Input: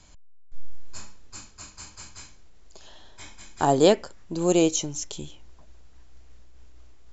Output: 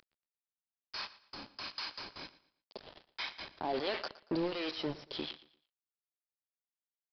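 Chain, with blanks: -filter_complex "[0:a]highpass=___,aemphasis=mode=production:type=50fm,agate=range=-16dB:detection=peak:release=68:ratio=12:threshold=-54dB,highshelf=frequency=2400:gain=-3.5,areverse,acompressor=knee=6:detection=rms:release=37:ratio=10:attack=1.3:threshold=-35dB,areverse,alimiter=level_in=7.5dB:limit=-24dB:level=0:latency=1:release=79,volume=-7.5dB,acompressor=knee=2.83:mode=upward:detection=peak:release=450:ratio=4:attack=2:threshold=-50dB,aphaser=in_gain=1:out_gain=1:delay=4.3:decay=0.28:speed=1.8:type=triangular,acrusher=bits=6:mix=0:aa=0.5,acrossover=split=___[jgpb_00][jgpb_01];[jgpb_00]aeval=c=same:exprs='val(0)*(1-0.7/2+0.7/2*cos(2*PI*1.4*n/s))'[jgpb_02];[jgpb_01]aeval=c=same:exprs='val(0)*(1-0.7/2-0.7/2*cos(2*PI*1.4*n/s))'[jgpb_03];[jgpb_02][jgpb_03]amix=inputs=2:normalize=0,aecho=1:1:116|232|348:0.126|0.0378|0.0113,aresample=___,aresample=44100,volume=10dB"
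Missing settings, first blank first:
330, 810, 11025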